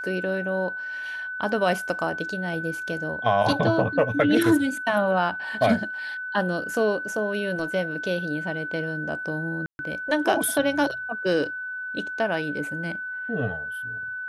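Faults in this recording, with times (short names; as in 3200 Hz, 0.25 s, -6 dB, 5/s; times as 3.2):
tone 1500 Hz -30 dBFS
9.66–9.79 gap 0.131 s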